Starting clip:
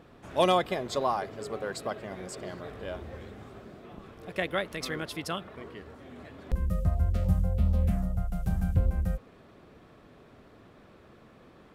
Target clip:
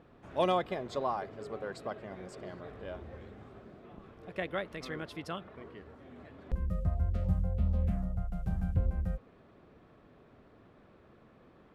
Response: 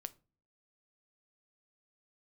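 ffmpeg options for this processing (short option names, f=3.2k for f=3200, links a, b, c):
-af "lowpass=f=2.5k:p=1,volume=-4.5dB"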